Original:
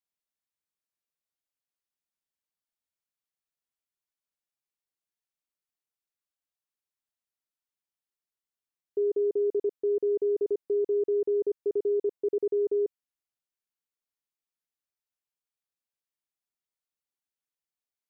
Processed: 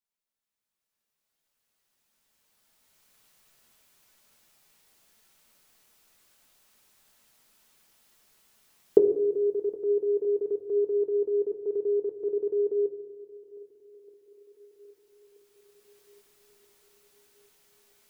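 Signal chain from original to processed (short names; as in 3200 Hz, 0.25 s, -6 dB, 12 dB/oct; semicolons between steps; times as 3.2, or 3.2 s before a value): recorder AGC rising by 9.5 dB/s; swung echo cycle 1.278 s, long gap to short 1.5:1, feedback 47%, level -23 dB; on a send at -4 dB: reverb RT60 1.1 s, pre-delay 5 ms; on the sum: gain -2.5 dB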